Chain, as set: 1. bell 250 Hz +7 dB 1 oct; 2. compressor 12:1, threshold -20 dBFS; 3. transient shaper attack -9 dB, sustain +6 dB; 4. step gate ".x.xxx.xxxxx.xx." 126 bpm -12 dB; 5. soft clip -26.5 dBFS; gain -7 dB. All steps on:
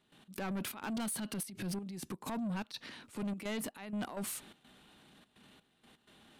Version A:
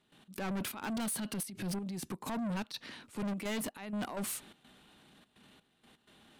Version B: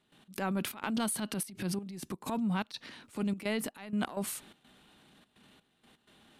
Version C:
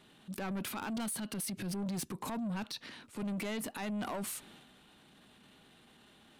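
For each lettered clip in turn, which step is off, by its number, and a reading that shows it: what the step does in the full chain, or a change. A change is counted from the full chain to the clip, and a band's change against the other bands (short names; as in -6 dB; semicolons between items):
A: 2, mean gain reduction 3.5 dB; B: 5, distortion -10 dB; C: 4, loudness change +1.5 LU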